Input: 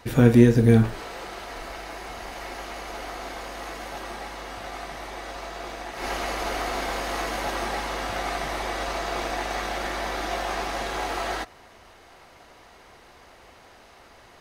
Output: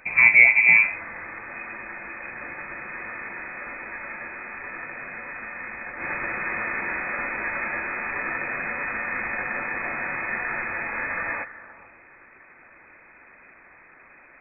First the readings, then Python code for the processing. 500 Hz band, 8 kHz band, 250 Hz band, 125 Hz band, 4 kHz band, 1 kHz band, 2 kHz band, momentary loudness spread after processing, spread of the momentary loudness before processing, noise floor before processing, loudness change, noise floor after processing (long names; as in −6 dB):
−11.0 dB, below −40 dB, −17.0 dB, −22.0 dB, below −35 dB, −4.0 dB, +12.5 dB, 20 LU, 18 LU, −51 dBFS, +4.0 dB, −52 dBFS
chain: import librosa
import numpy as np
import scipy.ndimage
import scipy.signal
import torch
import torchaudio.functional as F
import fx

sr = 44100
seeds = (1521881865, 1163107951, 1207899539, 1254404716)

y = fx.echo_stepped(x, sr, ms=145, hz=590.0, octaves=0.7, feedback_pct=70, wet_db=-11.0)
y = fx.freq_invert(y, sr, carrier_hz=2500)